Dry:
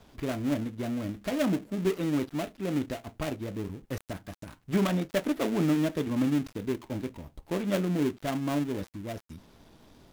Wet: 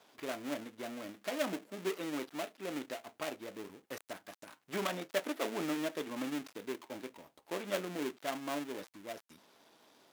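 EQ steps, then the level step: Bessel high-pass 540 Hz, order 2; -2.5 dB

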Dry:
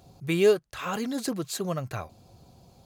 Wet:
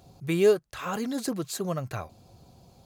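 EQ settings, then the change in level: dynamic bell 3 kHz, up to -4 dB, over -42 dBFS, Q 1; 0.0 dB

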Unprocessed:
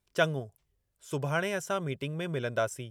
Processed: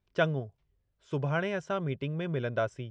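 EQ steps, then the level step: low-pass 6.2 kHz 12 dB/octave; distance through air 130 m; bass shelf 330 Hz +4 dB; -1.0 dB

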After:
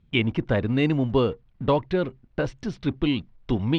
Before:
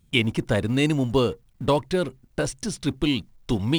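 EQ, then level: low-pass 3.4 kHz 12 dB/octave; distance through air 97 m; 0.0 dB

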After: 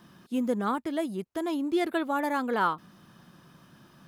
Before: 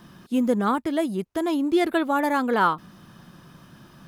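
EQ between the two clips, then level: bass shelf 69 Hz -10 dB; -5.5 dB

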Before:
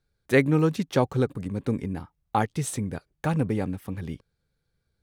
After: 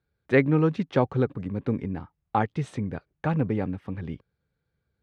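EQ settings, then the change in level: high-pass 56 Hz; low-pass 2.8 kHz 12 dB/octave; 0.0 dB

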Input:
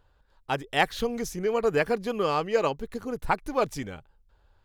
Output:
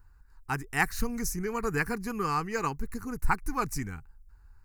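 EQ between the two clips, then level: bass shelf 84 Hz +10.5 dB; treble shelf 4.1 kHz +9 dB; static phaser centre 1.4 kHz, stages 4; 0.0 dB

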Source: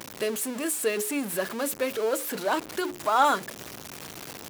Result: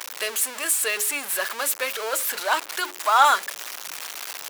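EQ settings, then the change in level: high-pass 980 Hz 12 dB/octave; +8.0 dB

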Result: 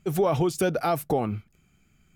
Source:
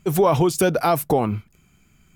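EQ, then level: treble shelf 7 kHz -4.5 dB; band-stop 1 kHz, Q 7.7; -5.5 dB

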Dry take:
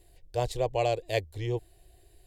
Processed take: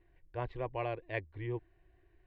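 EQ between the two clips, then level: low-pass 2 kHz 24 dB/octave; bass shelf 270 Hz -10 dB; high-order bell 590 Hz -10 dB 1.2 oct; +1.0 dB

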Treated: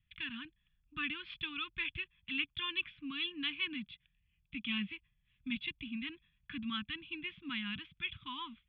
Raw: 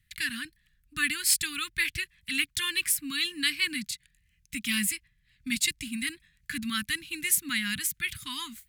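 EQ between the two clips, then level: rippled Chebyshev low-pass 3.5 kHz, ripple 6 dB; bass shelf 390 Hz -5 dB; peaking EQ 1.9 kHz -13 dB 1.1 oct; +3.5 dB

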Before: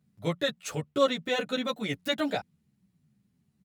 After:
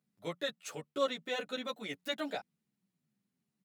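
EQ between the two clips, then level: Bessel high-pass 290 Hz, order 2; -7.0 dB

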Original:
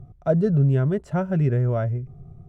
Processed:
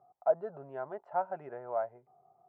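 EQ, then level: resonant high-pass 800 Hz, resonance Q 4.9; low-pass 1.2 kHz 12 dB/octave; -8.0 dB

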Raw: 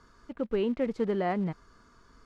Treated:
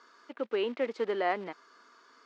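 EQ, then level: high-pass 280 Hz 24 dB/octave; distance through air 150 m; tilt EQ +3 dB/octave; +3.0 dB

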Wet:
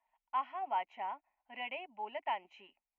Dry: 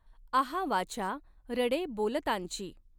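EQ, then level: elliptic band-pass 320–3500 Hz, stop band 40 dB; static phaser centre 1.2 kHz, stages 6; static phaser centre 2.4 kHz, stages 8; +1.0 dB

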